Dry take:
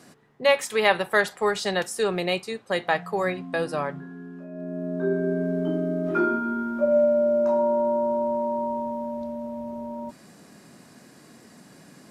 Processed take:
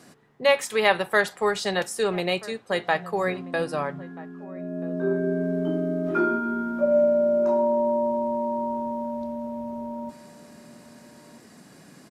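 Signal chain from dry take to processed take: outdoor echo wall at 220 m, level -18 dB

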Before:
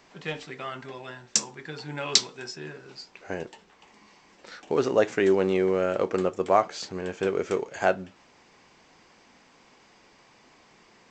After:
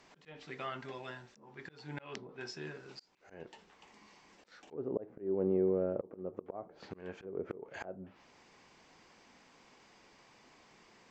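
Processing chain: treble ducked by the level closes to 530 Hz, closed at -22 dBFS; auto swell 0.296 s; gain -5 dB

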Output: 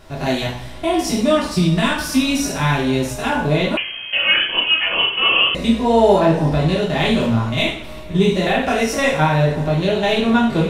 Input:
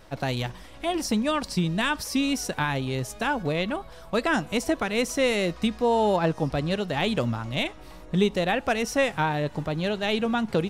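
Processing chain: stepped spectrum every 50 ms; two-slope reverb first 0.51 s, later 2.8 s, from -21 dB, DRR -4.5 dB; 3.77–5.55 inverted band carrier 3200 Hz; gain +4 dB

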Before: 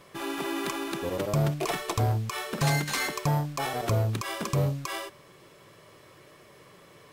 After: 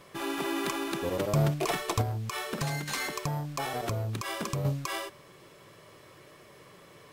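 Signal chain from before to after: 2.01–4.65 compressor, threshold -29 dBFS, peak gain reduction 8.5 dB

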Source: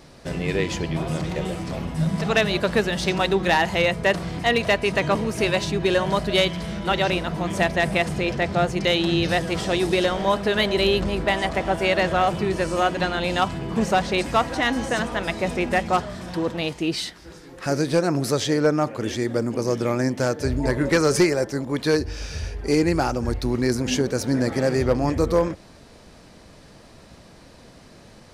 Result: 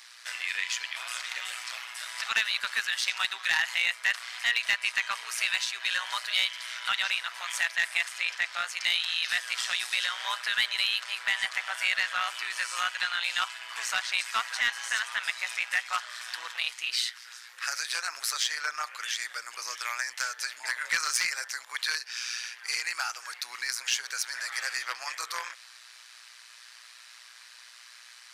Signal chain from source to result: HPF 1400 Hz 24 dB/oct; in parallel at +3 dB: compressor, threshold -35 dBFS, peak gain reduction 16.5 dB; on the sum: soft clip -12.5 dBFS, distortion -19 dB; AM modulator 120 Hz, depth 50%

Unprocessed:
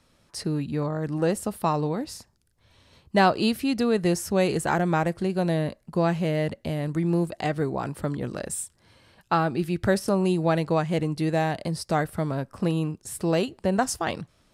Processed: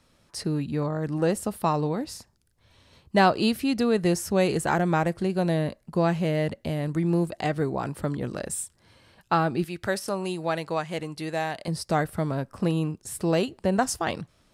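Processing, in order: 9.64–11.68 low shelf 430 Hz -11.5 dB

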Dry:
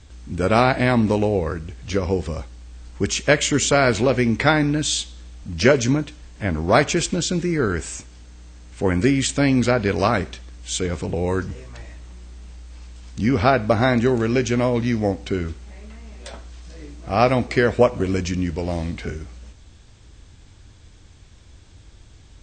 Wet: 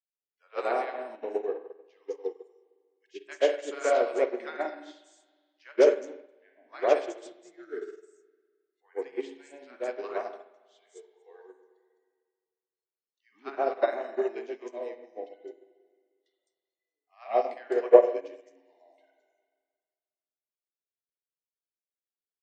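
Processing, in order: spectral noise reduction 23 dB; steep high-pass 380 Hz 36 dB/oct; tilt shelf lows +6.5 dB, about 850 Hz; three bands offset in time mids, lows, highs 0.13/0.21 s, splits 1000/5200 Hz; spring tank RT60 1.8 s, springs 44/51 ms, chirp 45 ms, DRR 1.5 dB; upward expander 2.5:1, over -28 dBFS

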